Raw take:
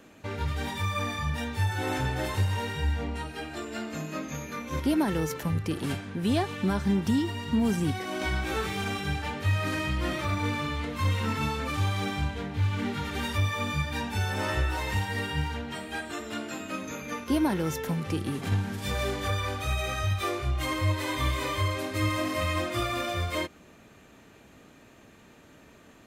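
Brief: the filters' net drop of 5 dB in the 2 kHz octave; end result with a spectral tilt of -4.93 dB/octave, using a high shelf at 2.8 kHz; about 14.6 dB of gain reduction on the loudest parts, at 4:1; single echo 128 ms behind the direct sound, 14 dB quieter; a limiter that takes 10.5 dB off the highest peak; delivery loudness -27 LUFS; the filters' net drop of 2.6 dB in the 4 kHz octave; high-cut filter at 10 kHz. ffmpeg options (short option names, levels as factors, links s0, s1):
-af "lowpass=10000,equalizer=f=2000:t=o:g=-8,highshelf=f=2800:g=9,equalizer=f=4000:t=o:g=-7.5,acompressor=threshold=0.01:ratio=4,alimiter=level_in=5.31:limit=0.0631:level=0:latency=1,volume=0.188,aecho=1:1:128:0.2,volume=10"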